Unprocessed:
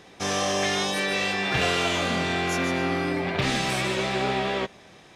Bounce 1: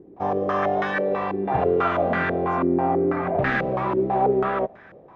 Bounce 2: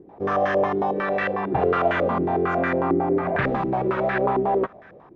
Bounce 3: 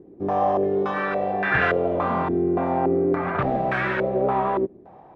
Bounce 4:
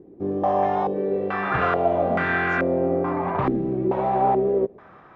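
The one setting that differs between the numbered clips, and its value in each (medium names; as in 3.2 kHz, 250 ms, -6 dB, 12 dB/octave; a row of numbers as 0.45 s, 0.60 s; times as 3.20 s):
step-sequenced low-pass, rate: 6.1 Hz, 11 Hz, 3.5 Hz, 2.3 Hz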